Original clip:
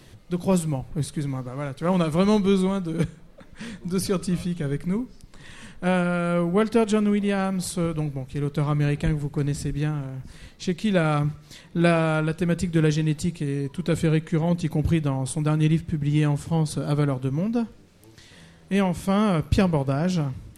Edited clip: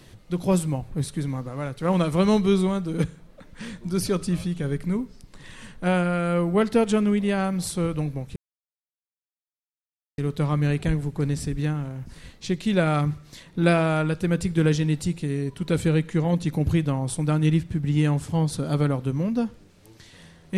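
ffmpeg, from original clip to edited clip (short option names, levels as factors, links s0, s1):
-filter_complex "[0:a]asplit=2[s0][s1];[s0]atrim=end=8.36,asetpts=PTS-STARTPTS,afade=t=out:st=8.356:d=0.004:c=hsin,apad=pad_dur=1.82[s2];[s1]atrim=start=8.36,asetpts=PTS-STARTPTS,afade=t=in:d=0.004:c=hsin[s3];[s2][s3]concat=n=2:v=0:a=1"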